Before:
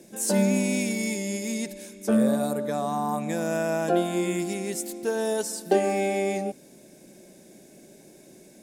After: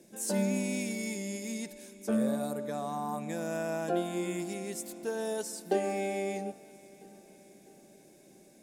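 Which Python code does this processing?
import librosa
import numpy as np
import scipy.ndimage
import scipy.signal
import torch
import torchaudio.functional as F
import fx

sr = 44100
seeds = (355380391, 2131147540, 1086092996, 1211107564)

p1 = x + fx.echo_feedback(x, sr, ms=651, feedback_pct=55, wet_db=-22.0, dry=0)
y = F.gain(torch.from_numpy(p1), -7.5).numpy()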